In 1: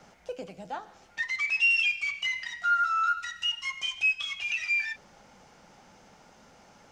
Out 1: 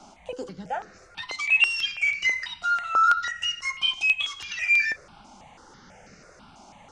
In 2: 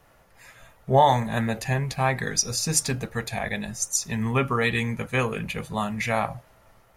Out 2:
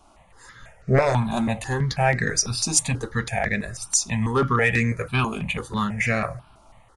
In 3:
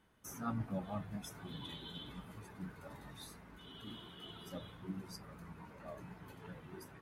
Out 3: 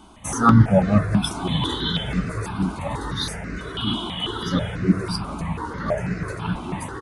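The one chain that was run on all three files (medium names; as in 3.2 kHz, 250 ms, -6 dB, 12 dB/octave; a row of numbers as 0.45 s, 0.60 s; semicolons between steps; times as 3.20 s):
sine folder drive 6 dB, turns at -5 dBFS; resampled via 22.05 kHz; stepped phaser 6.1 Hz 490–3300 Hz; normalise loudness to -23 LUFS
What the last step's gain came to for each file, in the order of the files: -1.0 dB, -3.5 dB, +17.0 dB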